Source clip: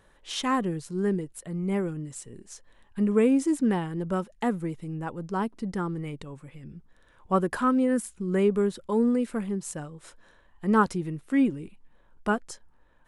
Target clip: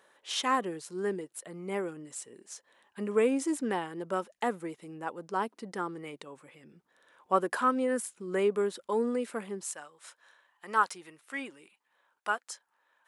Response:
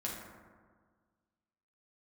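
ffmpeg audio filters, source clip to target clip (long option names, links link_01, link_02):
-af "asetnsamples=nb_out_samples=441:pad=0,asendcmd='9.63 highpass f 900',highpass=410"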